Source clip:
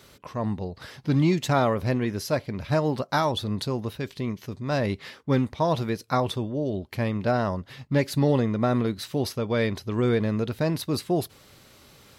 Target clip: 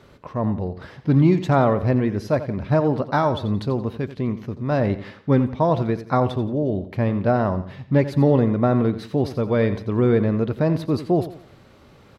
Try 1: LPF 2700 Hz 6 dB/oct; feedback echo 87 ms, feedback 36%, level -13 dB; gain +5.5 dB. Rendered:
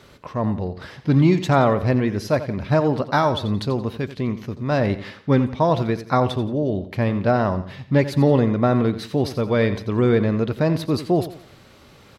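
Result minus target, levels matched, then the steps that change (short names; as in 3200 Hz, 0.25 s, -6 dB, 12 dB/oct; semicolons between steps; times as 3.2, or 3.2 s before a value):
4000 Hz band +6.0 dB
add after LPF: high shelf 2000 Hz -8.5 dB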